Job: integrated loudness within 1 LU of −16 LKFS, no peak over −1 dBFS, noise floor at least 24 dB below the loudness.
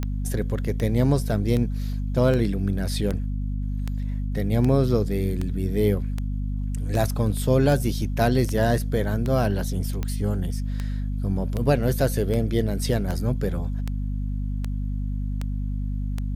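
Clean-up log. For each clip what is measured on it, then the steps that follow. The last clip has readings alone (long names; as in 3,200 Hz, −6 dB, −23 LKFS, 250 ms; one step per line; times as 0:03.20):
number of clicks 22; mains hum 50 Hz; hum harmonics up to 250 Hz; level of the hum −24 dBFS; integrated loudness −25.0 LKFS; sample peak −6.5 dBFS; target loudness −16.0 LKFS
→ click removal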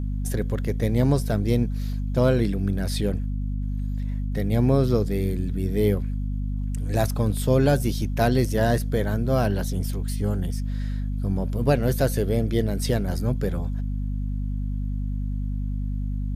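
number of clicks 0; mains hum 50 Hz; hum harmonics up to 250 Hz; level of the hum −24 dBFS
→ hum removal 50 Hz, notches 5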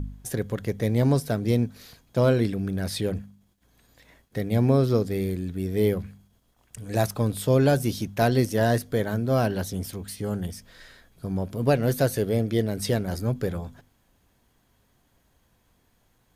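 mains hum none found; integrated loudness −25.5 LKFS; sample peak −7.0 dBFS; target loudness −16.0 LKFS
→ level +9.5 dB
brickwall limiter −1 dBFS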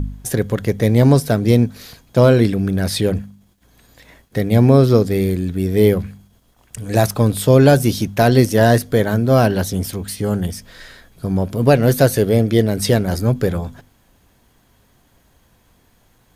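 integrated loudness −16.0 LKFS; sample peak −1.0 dBFS; background noise floor −57 dBFS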